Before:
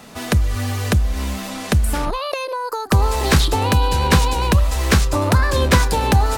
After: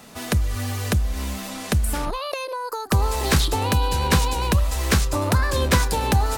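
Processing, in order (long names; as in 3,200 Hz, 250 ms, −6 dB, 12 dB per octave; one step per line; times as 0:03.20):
high-shelf EQ 6,400 Hz +5 dB
level −4.5 dB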